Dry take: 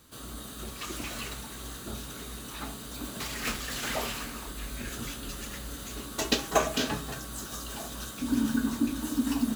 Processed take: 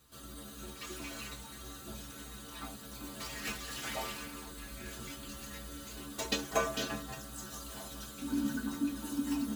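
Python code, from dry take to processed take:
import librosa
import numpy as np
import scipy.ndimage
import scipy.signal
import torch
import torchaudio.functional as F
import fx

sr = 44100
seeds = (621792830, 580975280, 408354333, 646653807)

y = fx.stiff_resonator(x, sr, f0_hz=67.0, decay_s=0.31, stiffness=0.008)
y = y * 10.0 ** (1.5 / 20.0)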